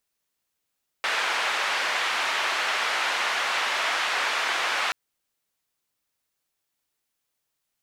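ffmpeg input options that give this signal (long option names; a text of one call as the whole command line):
ffmpeg -f lavfi -i "anoisesrc=color=white:duration=3.88:sample_rate=44100:seed=1,highpass=frequency=820,lowpass=frequency=2300,volume=-9.9dB" out.wav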